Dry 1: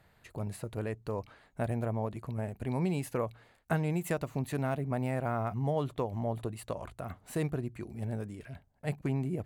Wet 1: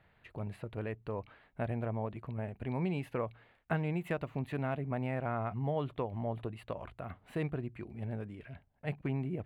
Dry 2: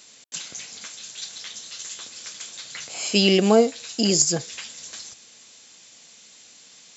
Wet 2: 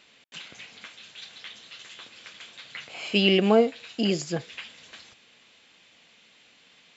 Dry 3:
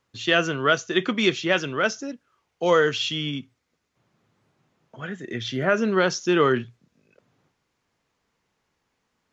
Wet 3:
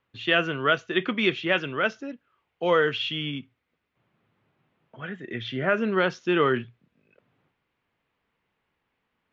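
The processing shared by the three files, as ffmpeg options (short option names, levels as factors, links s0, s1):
-af "highshelf=f=4300:t=q:w=1.5:g=-14,volume=0.708"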